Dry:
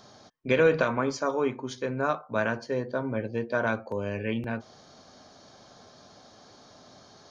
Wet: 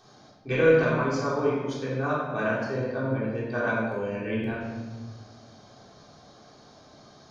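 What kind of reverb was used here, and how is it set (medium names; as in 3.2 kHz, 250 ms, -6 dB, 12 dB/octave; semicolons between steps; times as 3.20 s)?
simulated room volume 1100 m³, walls mixed, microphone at 3.6 m; trim -7 dB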